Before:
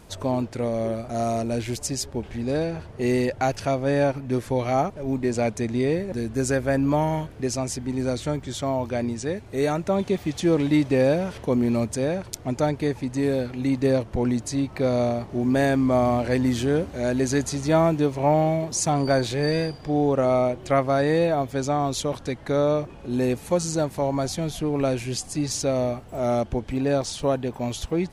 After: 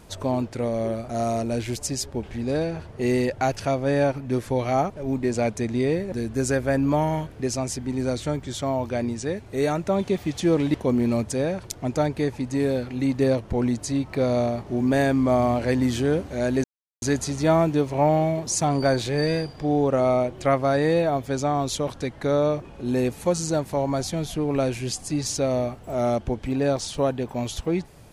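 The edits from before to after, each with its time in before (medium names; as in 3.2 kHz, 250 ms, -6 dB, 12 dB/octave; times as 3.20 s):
10.74–11.37 s: delete
17.27 s: insert silence 0.38 s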